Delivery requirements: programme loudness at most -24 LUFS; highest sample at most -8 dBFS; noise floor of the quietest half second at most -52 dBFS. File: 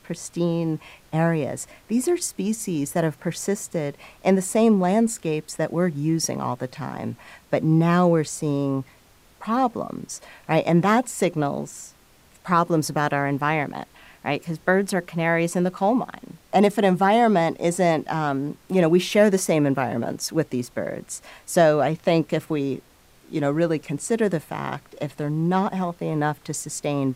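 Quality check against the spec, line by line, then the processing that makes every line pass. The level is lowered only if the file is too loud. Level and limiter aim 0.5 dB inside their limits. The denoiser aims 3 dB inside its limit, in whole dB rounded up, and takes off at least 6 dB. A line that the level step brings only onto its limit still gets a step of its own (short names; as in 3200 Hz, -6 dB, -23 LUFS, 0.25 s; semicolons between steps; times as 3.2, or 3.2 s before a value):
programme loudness -23.0 LUFS: fail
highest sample -6.5 dBFS: fail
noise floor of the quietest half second -54 dBFS: OK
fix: gain -1.5 dB; limiter -8.5 dBFS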